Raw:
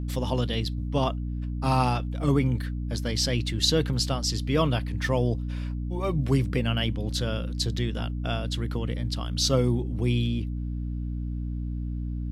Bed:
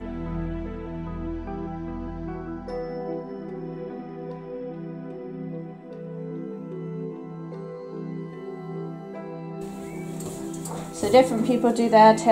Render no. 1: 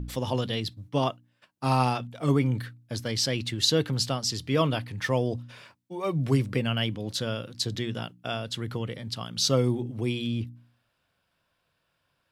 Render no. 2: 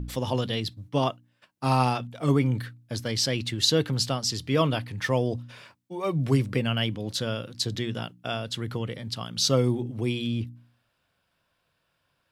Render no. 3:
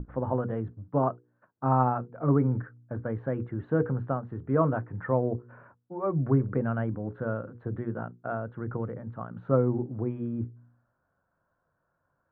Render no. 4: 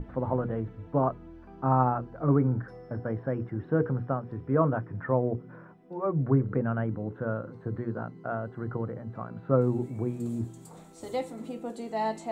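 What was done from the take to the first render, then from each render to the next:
de-hum 60 Hz, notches 5
trim +1 dB
elliptic low-pass 1.5 kHz, stop band 70 dB; hum notches 60/120/180/240/300/360/420/480 Hz
add bed -16 dB

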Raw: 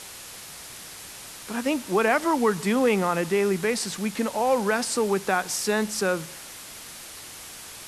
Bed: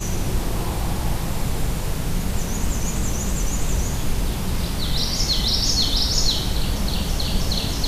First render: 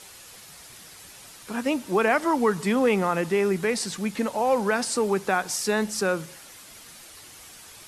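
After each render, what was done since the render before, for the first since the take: noise reduction 7 dB, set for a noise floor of -42 dBFS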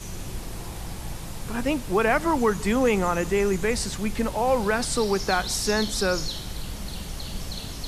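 add bed -11.5 dB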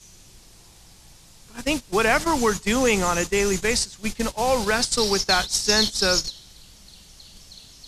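gate -25 dBFS, range -18 dB; peaking EQ 5.6 kHz +12.5 dB 2.2 oct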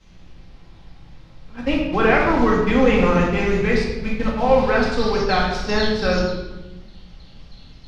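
distance through air 320 m; simulated room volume 550 m³, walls mixed, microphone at 2.1 m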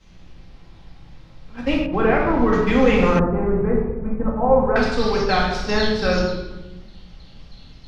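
1.86–2.53 s: low-pass 1.1 kHz 6 dB/octave; 3.19–4.76 s: low-pass 1.2 kHz 24 dB/octave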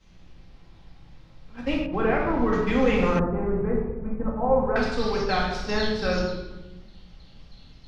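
trim -5.5 dB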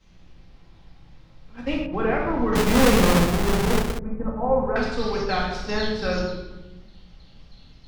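2.55–3.99 s: square wave that keeps the level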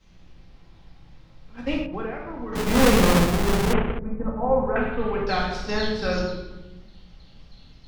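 1.79–2.83 s: dip -10.5 dB, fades 0.32 s; 3.73–5.27 s: steep low-pass 3 kHz 48 dB/octave

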